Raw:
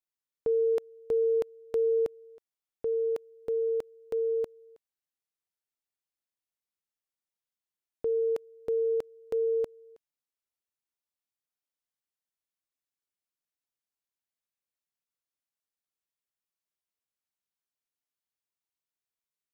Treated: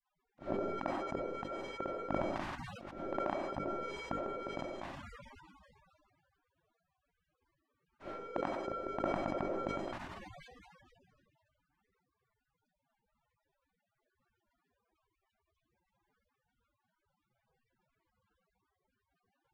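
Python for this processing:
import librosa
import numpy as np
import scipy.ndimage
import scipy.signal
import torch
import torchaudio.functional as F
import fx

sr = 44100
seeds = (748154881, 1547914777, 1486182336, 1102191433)

p1 = x + 0.5 * 10.0 ** (-42.0 / 20.0) * np.sign(x)
p2 = fx.low_shelf(p1, sr, hz=450.0, db=3.0)
p3 = p2 + 10.0 ** (-8.0 / 20.0) * np.pad(p2, (int(99 * sr / 1000.0), 0))[:len(p2)]
p4 = fx.over_compress(p3, sr, threshold_db=-33.0, ratio=-1.0)
p5 = p3 + (p4 * librosa.db_to_amplitude(0.0))
p6 = fx.granulator(p5, sr, seeds[0], grain_ms=100.0, per_s=20.0, spray_ms=100.0, spread_st=0)
p7 = fx.low_shelf(p6, sr, hz=130.0, db=-8.0)
p8 = fx.hum_notches(p7, sr, base_hz=50, count=6)
p9 = fx.rev_freeverb(p8, sr, rt60_s=0.55, hf_ratio=0.7, predelay_ms=50, drr_db=5.0)
p10 = fx.auto_swell(p9, sr, attack_ms=125.0)
p11 = fx.spec_gate(p10, sr, threshold_db=-25, keep='weak')
p12 = scipy.signal.sosfilt(scipy.signal.butter(2, 1200.0, 'lowpass', fs=sr, output='sos'), p11)
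p13 = fx.sustainer(p12, sr, db_per_s=24.0)
y = p13 * librosa.db_to_amplitude(9.5)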